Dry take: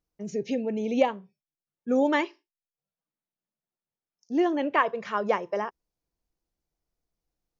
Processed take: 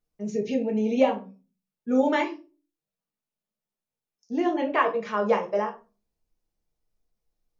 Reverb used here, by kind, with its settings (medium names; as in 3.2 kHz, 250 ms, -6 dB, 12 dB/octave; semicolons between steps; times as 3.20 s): simulated room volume 140 m³, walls furnished, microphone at 1.4 m; trim -2 dB